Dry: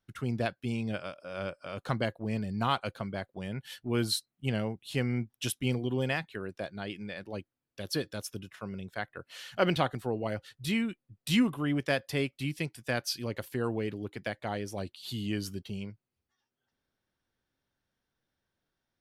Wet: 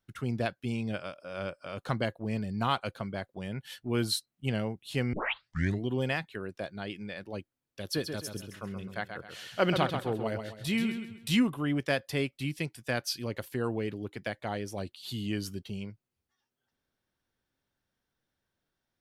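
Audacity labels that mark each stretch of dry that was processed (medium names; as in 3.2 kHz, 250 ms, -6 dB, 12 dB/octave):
5.130000	5.130000	tape start 0.73 s
7.840000	11.300000	feedback delay 132 ms, feedback 36%, level -7 dB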